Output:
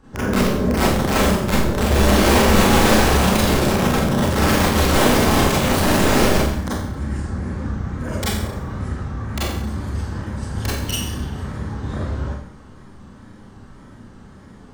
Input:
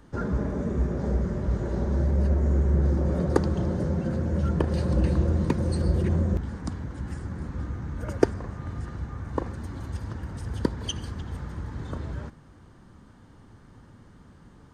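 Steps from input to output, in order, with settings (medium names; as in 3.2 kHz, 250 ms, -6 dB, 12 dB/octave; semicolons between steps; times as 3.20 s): integer overflow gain 19 dB; wow and flutter 120 cents; Schroeder reverb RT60 0.68 s, combs from 29 ms, DRR -9 dB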